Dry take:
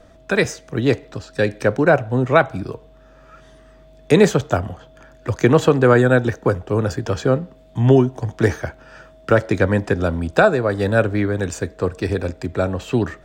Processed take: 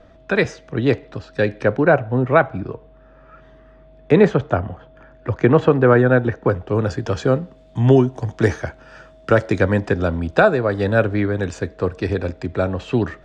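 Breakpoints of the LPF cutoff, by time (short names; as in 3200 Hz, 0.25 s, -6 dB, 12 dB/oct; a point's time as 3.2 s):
1.42 s 3800 Hz
2.34 s 2300 Hz
6.28 s 2300 Hz
6.75 s 4600 Hz
7.3 s 7600 Hz
9.5 s 7600 Hz
10.2 s 4700 Hz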